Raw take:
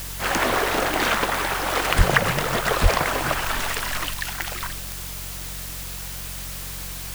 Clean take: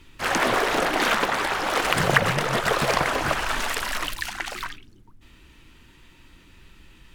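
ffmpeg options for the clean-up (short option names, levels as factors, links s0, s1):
-filter_complex "[0:a]adeclick=t=4,bandreject=f=45.6:t=h:w=4,bandreject=f=91.2:t=h:w=4,bandreject=f=136.8:t=h:w=4,bandreject=f=182.4:t=h:w=4,asplit=3[s0][s1][s2];[s0]afade=t=out:st=1.97:d=0.02[s3];[s1]highpass=f=140:w=0.5412,highpass=f=140:w=1.3066,afade=t=in:st=1.97:d=0.02,afade=t=out:st=2.09:d=0.02[s4];[s2]afade=t=in:st=2.09:d=0.02[s5];[s3][s4][s5]amix=inputs=3:normalize=0,asplit=3[s6][s7][s8];[s6]afade=t=out:st=2.82:d=0.02[s9];[s7]highpass=f=140:w=0.5412,highpass=f=140:w=1.3066,afade=t=in:st=2.82:d=0.02,afade=t=out:st=2.94:d=0.02[s10];[s8]afade=t=in:st=2.94:d=0.02[s11];[s9][s10][s11]amix=inputs=3:normalize=0,afwtdn=0.018"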